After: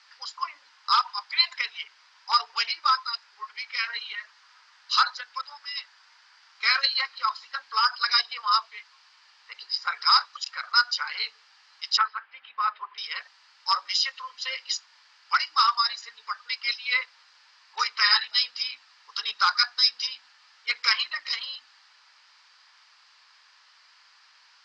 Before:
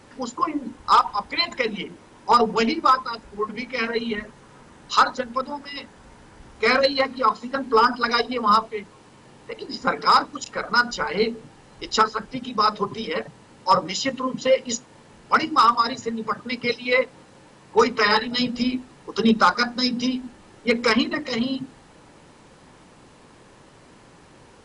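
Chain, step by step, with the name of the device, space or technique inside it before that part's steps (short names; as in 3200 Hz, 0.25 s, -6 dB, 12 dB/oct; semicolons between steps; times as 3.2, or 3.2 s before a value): headphones lying on a table (HPF 1200 Hz 24 dB/oct; bell 4800 Hz +11 dB 0.41 oct); 11.97–12.98 LPF 2600 Hz 24 dB/oct; LPF 5700 Hz 24 dB/oct; gain -2.5 dB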